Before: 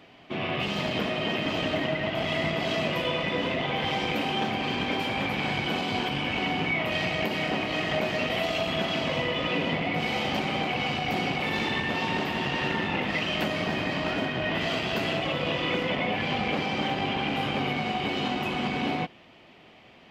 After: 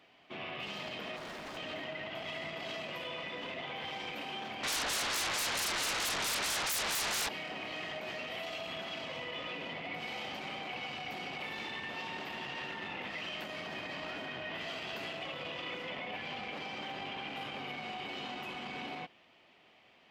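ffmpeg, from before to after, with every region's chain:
ffmpeg -i in.wav -filter_complex "[0:a]asettb=1/sr,asplit=3[link_01][link_02][link_03];[link_01]atrim=end=1.164[link_04];[link_02]atrim=start=1.16:end=1.57,asetpts=PTS-STARTPTS,afade=type=in:duration=0.004:curve=qsin,afade=type=out:start_time=0.406:duration=0.004:curve=qsin,equalizer=frequency=2800:width=2.1:gain=-12,aeval=exprs='0.0398*(abs(mod(val(0)/0.0398+3,4)-2)-1)':channel_layout=same[link_05];[link_03]atrim=start=1.566[link_06];[link_04][link_05]acrossfade=duration=0.004:curve1=hsin:curve2=qsin[link_07];[link_07][link_06]acrossfade=duration=0.004:curve1=qsin:curve2=hsin,asettb=1/sr,asplit=3[link_08][link_09][link_10];[link_08]atrim=end=4.634[link_11];[link_09]atrim=start=4.63:end=7.29,asetpts=PTS-STARTPTS,afade=type=in:duration=0.004:curve=qsin,afade=type=out:start_time=2.656:duration=0.004:curve=qsin,highshelf=frequency=4000:gain=-10,acrossover=split=620[link_12][link_13];[link_12]aeval=exprs='val(0)*(1-0.7/2+0.7/2*cos(2*PI*4.5*n/s))':channel_layout=same[link_14];[link_13]aeval=exprs='val(0)*(1-0.7/2-0.7/2*cos(2*PI*4.5*n/s))':channel_layout=same[link_15];[link_14][link_15]amix=inputs=2:normalize=0,aeval=exprs='0.112*sin(PI/2*10*val(0)/0.112)':channel_layout=same[link_16];[link_10]atrim=start=7.286[link_17];[link_11][link_16]acrossfade=duration=0.004:curve1=hsin:curve2=qsin[link_18];[link_18][link_17]acrossfade=duration=0.004:curve1=qsin:curve2=hsin,alimiter=limit=-22dB:level=0:latency=1:release=23,lowshelf=frequency=380:gain=-10,volume=-8dB" out.wav

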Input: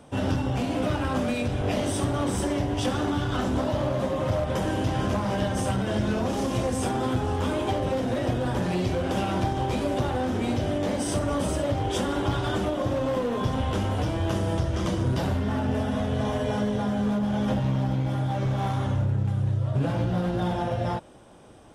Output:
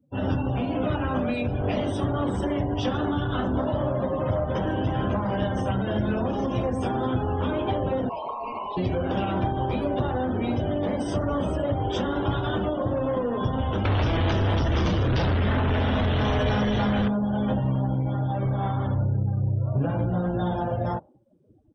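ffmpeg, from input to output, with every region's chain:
ffmpeg -i in.wav -filter_complex "[0:a]asettb=1/sr,asplit=3[link_01][link_02][link_03];[link_01]atrim=end=8.094[link_04];[link_02]atrim=start=8.09:end=8.77,asetpts=PTS-STARTPTS,afade=type=in:duration=0.004:curve=qsin,afade=type=out:start_time=0.676:duration=0.004:curve=qsin,aeval=exprs='val(0)*sin(2*PI*1200*n/s)':channel_layout=same,asuperstop=centerf=1600:order=8:qfactor=1.4,volume=25.5dB,asoftclip=hard,volume=-25.5dB[link_05];[link_03]atrim=start=8.766[link_06];[link_04][link_05]acrossfade=duration=0.004:curve1=hsin:curve2=qsin[link_07];[link_07][link_06]acrossfade=duration=0.004:curve1=qsin:curve2=hsin,asettb=1/sr,asplit=3[link_08][link_09][link_10];[link_08]atrim=end=13.854[link_11];[link_09]atrim=start=13.85:end=17.08,asetpts=PTS-STARTPTS,afade=type=in:duration=0.004:curve=qsin,afade=type=out:start_time=3.226:duration=0.004:curve=qsin,acrossover=split=89|1300[link_12][link_13][link_14];[link_12]acompressor=threshold=-36dB:ratio=4[link_15];[link_13]acompressor=threshold=-40dB:ratio=4[link_16];[link_14]acompressor=threshold=-46dB:ratio=4[link_17];[link_15][link_16][link_17]amix=inputs=3:normalize=0,aeval=exprs='0.106*sin(PI/2*4.47*val(0)/0.106)':channel_layout=same[link_18];[link_10]atrim=start=17.076[link_19];[link_11][link_18]acrossfade=duration=0.004:curve1=hsin:curve2=qsin[link_20];[link_20][link_19]acrossfade=duration=0.004:curve1=qsin:curve2=hsin,acrossover=split=6100[link_21][link_22];[link_22]acompressor=threshold=-49dB:ratio=4:attack=1:release=60[link_23];[link_21][link_23]amix=inputs=2:normalize=0,afftdn=noise_reduction=34:noise_floor=-39,dynaudnorm=framelen=120:gausssize=3:maxgain=7dB,volume=-6.5dB" out.wav

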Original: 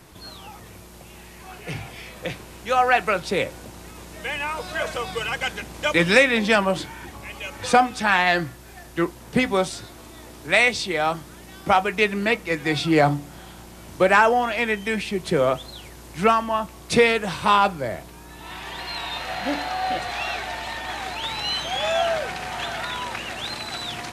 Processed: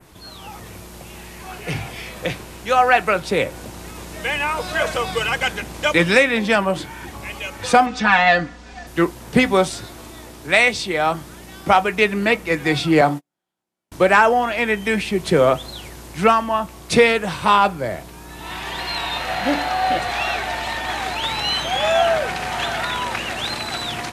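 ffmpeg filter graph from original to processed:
ffmpeg -i in.wav -filter_complex "[0:a]asettb=1/sr,asplit=3[link_01][link_02][link_03];[link_01]atrim=end=7.864[link_04];[link_02]atrim=start=7.86:end=8.87,asetpts=PTS-STARTPTS,afade=type=in:duration=0.004:curve=qsin,afade=type=out:start_time=1.006:duration=0.004:curve=qsin,lowpass=frequency=6500:width=0.5412,lowpass=frequency=6500:width=1.3066,aecho=1:1:4.1:0.85,atrim=end_sample=44541[link_05];[link_03]atrim=start=8.866[link_06];[link_04][link_05]acrossfade=duration=0.004:curve1=hsin:curve2=qsin[link_07];[link_07][link_06]acrossfade=duration=0.004:curve1=qsin:curve2=hsin,asettb=1/sr,asplit=3[link_08][link_09][link_10];[link_08]atrim=end=13.014[link_11];[link_09]atrim=start=13.01:end=13.92,asetpts=PTS-STARTPTS,afade=type=in:duration=0.004:curve=qsin,afade=type=out:start_time=0.906:duration=0.004:curve=qsin,highpass=200,agate=range=-44dB:threshold=-32dB:ratio=16:release=100:detection=peak[link_12];[link_10]atrim=start=13.916[link_13];[link_11][link_12]acrossfade=duration=0.004:curve1=hsin:curve2=qsin[link_14];[link_14][link_13]acrossfade=duration=0.004:curve1=qsin:curve2=hsin,adynamicequalizer=threshold=0.0158:dfrequency=4900:dqfactor=0.83:tfrequency=4900:tqfactor=0.83:attack=5:release=100:ratio=0.375:range=2:mode=cutabove:tftype=bell,dynaudnorm=framelen=280:gausssize=3:maxgain=6dB" out.wav

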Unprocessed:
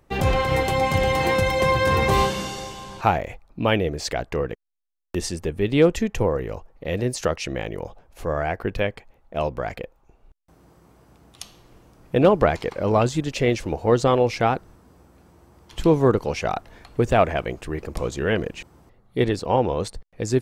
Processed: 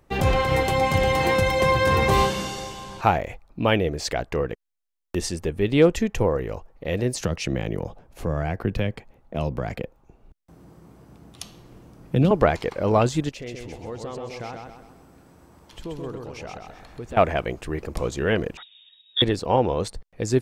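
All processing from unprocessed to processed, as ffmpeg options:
ffmpeg -i in.wav -filter_complex "[0:a]asettb=1/sr,asplit=3[link_01][link_02][link_03];[link_01]atrim=end=7.144[link_04];[link_02]atrim=start=7.14:end=12.31,asetpts=PTS-STARTPTS,afade=type=in:duration=0.004:curve=qsin,afade=type=out:start_time=5.166:duration=0.004:curve=qsin,acrossover=split=190|3000[link_05][link_06][link_07];[link_06]acompressor=threshold=-28dB:ratio=4:attack=3.2:release=140:knee=2.83:detection=peak[link_08];[link_05][link_08][link_07]amix=inputs=3:normalize=0,equalizer=frequency=180:width_type=o:width=2.4:gain=7.5[link_09];[link_03]atrim=start=12.306[link_10];[link_04][link_09]acrossfade=duration=0.004:curve1=hsin:curve2=qsin[link_11];[link_11][link_10]acrossfade=duration=0.004:curve1=qsin:curve2=hsin,asettb=1/sr,asplit=3[link_12][link_13][link_14];[link_12]atrim=end=13.294[link_15];[link_13]atrim=start=13.29:end=17.17,asetpts=PTS-STARTPTS,afade=type=in:duration=0.004:curve=qsin,afade=type=out:start_time=3.876:duration=0.004:curve=qsin,acompressor=threshold=-45dB:ratio=2:attack=3.2:release=140:knee=1:detection=peak,aecho=1:1:130|260|390|520|650|780:0.631|0.278|0.122|0.0537|0.0236|0.0104,atrim=end_sample=171108[link_16];[link_14]atrim=start=17.166[link_17];[link_15][link_16]acrossfade=duration=0.004:curve1=hsin:curve2=qsin[link_18];[link_18][link_17]acrossfade=duration=0.004:curve1=qsin:curve2=hsin,asettb=1/sr,asplit=3[link_19][link_20][link_21];[link_19]atrim=end=18.574[link_22];[link_20]atrim=start=18.57:end=19.22,asetpts=PTS-STARTPTS,afade=type=in:duration=0.004:curve=qsin,afade=type=out:start_time=0.646:duration=0.004:curve=qsin,equalizer=frequency=2600:width=1.6:gain=-8.5,lowpass=frequency=3200:width_type=q:width=0.5098,lowpass=frequency=3200:width_type=q:width=0.6013,lowpass=frequency=3200:width_type=q:width=0.9,lowpass=frequency=3200:width_type=q:width=2.563,afreqshift=-3800[link_23];[link_21]atrim=start=19.216[link_24];[link_22][link_23]acrossfade=duration=0.004:curve1=hsin:curve2=qsin[link_25];[link_25][link_24]acrossfade=duration=0.004:curve1=qsin:curve2=hsin" out.wav

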